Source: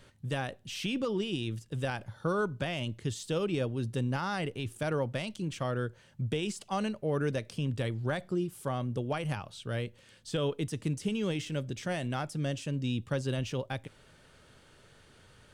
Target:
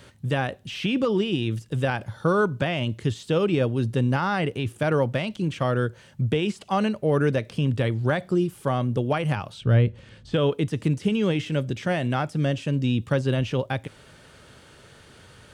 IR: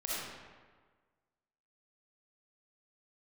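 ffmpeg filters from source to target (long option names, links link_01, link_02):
-filter_complex "[0:a]acrossover=split=3500[link_01][link_02];[link_02]acompressor=threshold=-56dB:ratio=4:attack=1:release=60[link_03];[link_01][link_03]amix=inputs=2:normalize=0,highpass=45,asettb=1/sr,asplit=3[link_04][link_05][link_06];[link_04]atrim=end=9.614[link_07];[link_05]atrim=start=9.61:end=10.34,asetpts=PTS-STARTPTS,afade=type=in:duration=0.004:curve=qsin,afade=type=out:start_time=0.726:duration=0.004:curve=qsin,aemphasis=mode=reproduction:type=bsi[link_08];[link_06]atrim=start=10.336[link_09];[link_07][link_08]acrossfade=duration=0.004:curve1=hsin:curve2=qsin[link_10];[link_10][link_09]acrossfade=duration=0.004:curve1=qsin:curve2=hsin,volume=9dB"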